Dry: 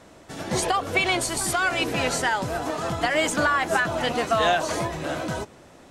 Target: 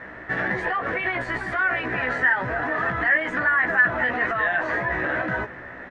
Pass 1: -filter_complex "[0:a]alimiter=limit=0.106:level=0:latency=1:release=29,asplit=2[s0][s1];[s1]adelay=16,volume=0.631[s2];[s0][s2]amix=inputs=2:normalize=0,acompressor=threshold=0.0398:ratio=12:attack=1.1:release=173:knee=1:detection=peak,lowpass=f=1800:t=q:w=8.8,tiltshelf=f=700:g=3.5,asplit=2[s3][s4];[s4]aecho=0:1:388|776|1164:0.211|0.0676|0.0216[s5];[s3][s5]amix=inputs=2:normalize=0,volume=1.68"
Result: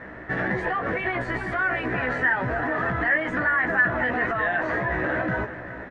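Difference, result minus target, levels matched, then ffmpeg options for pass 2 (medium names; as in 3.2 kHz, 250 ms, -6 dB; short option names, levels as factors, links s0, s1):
echo-to-direct +11.5 dB; 500 Hz band +2.5 dB
-filter_complex "[0:a]alimiter=limit=0.106:level=0:latency=1:release=29,asplit=2[s0][s1];[s1]adelay=16,volume=0.631[s2];[s0][s2]amix=inputs=2:normalize=0,acompressor=threshold=0.0398:ratio=12:attack=1.1:release=173:knee=1:detection=peak,lowpass=f=1800:t=q:w=8.8,asplit=2[s3][s4];[s4]aecho=0:1:388|776:0.0562|0.018[s5];[s3][s5]amix=inputs=2:normalize=0,volume=1.68"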